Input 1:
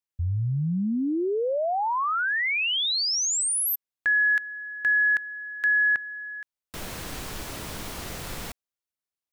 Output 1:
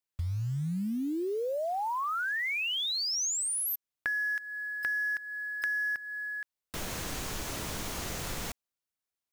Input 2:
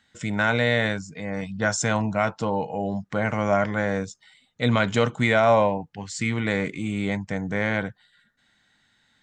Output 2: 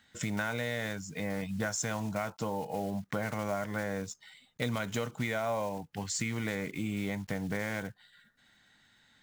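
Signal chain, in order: block floating point 5-bit; dynamic EQ 6500 Hz, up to +5 dB, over -50 dBFS, Q 3.4; compressor 5:1, threshold -31 dBFS

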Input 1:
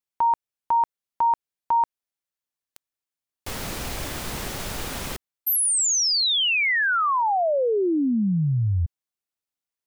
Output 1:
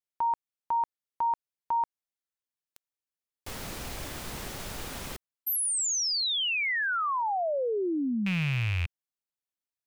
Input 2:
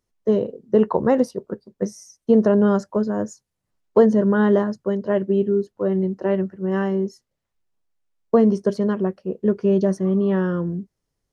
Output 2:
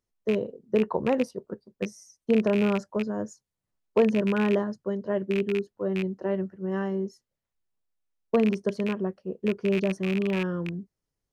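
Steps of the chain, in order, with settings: rattling part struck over -23 dBFS, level -15 dBFS; gain -7 dB

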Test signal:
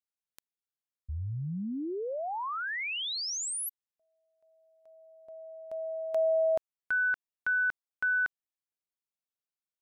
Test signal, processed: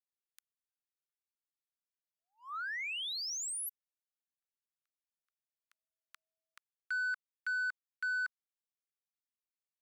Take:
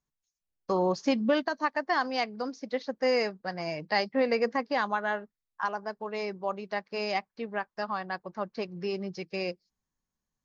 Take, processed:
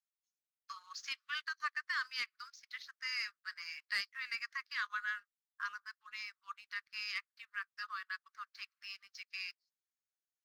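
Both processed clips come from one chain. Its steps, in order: steep high-pass 1200 Hz 72 dB/oct; sample leveller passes 1; gain -7.5 dB

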